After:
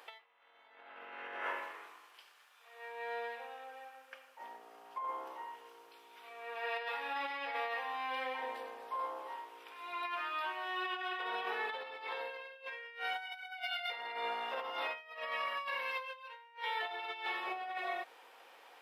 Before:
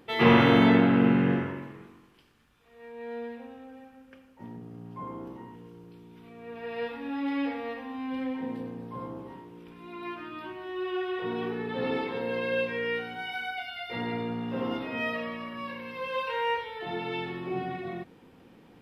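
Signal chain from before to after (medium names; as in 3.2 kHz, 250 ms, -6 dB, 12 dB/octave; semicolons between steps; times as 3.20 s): high-pass 640 Hz 24 dB/octave; compressor with a negative ratio -41 dBFS, ratio -0.5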